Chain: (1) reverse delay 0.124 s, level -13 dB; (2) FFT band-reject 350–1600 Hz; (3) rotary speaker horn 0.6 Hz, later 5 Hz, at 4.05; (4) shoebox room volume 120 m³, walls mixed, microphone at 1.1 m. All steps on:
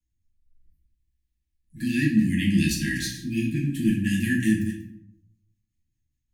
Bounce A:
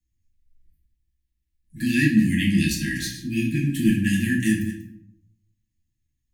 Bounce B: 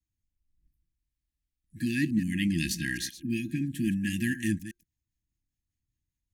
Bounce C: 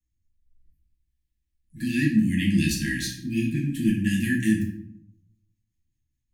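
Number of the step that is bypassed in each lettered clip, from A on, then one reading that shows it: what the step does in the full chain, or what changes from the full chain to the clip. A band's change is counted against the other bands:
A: 3, loudness change +2.0 LU; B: 4, echo-to-direct 2.5 dB to none; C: 1, momentary loudness spread change -2 LU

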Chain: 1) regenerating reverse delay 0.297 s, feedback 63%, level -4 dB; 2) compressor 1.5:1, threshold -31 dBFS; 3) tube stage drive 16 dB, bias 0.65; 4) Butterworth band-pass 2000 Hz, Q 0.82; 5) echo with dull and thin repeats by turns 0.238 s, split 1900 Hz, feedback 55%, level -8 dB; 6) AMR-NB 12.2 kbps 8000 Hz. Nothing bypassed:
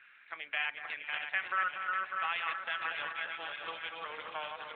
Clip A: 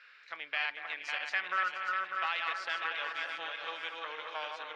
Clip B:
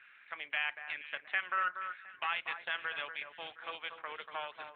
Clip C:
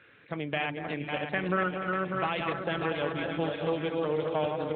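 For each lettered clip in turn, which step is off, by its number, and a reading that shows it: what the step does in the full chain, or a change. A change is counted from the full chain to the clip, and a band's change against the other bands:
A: 6, 4 kHz band +1.5 dB; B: 1, momentary loudness spread change +3 LU; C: 4, 250 Hz band +27.0 dB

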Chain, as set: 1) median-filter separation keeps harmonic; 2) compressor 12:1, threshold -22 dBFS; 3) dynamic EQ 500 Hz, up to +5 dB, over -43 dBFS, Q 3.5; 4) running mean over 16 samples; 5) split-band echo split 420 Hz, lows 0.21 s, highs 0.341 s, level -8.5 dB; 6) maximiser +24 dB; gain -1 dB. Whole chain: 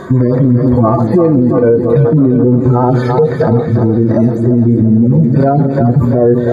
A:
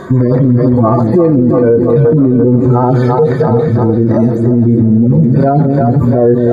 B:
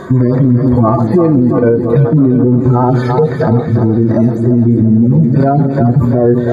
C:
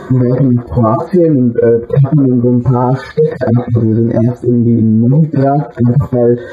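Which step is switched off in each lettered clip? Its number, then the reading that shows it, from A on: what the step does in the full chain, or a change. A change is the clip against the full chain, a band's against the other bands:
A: 2, mean gain reduction 3.5 dB; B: 3, 500 Hz band -2.0 dB; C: 5, momentary loudness spread change +1 LU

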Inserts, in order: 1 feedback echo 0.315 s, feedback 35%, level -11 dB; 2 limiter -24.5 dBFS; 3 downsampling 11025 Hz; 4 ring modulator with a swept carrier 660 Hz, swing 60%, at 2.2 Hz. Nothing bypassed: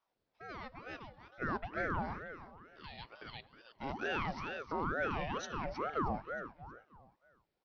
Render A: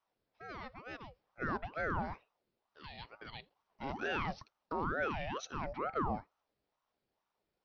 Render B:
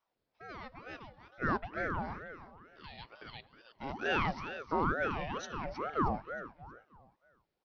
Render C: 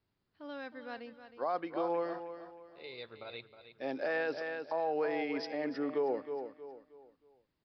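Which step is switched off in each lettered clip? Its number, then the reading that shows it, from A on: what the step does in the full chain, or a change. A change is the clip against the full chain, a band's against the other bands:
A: 1, momentary loudness spread change -2 LU; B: 2, crest factor change +3.0 dB; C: 4, 125 Hz band -13.0 dB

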